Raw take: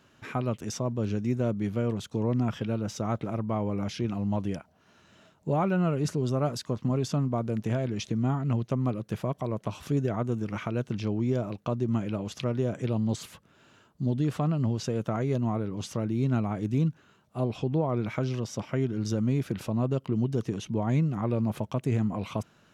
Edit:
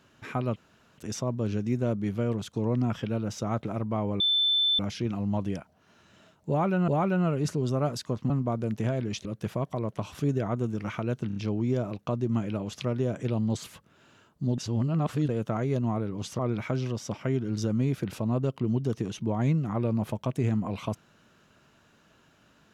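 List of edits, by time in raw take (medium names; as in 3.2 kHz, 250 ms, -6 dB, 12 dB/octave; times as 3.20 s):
0.56 s: insert room tone 0.42 s
3.78 s: add tone 3.53 kHz -21 dBFS 0.59 s
5.48–5.87 s: loop, 2 plays
6.90–7.16 s: delete
8.11–8.93 s: delete
10.95 s: stutter 0.03 s, 4 plays
14.17–14.88 s: reverse
15.98–17.87 s: delete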